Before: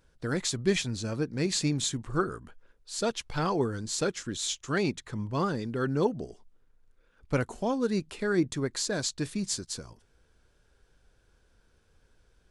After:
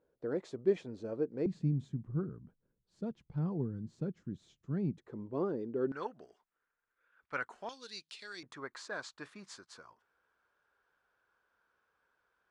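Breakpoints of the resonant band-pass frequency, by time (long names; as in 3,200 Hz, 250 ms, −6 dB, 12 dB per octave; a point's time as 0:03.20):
resonant band-pass, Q 1.9
460 Hz
from 0:01.46 160 Hz
from 0:04.98 390 Hz
from 0:05.92 1,500 Hz
from 0:07.69 4,100 Hz
from 0:08.43 1,200 Hz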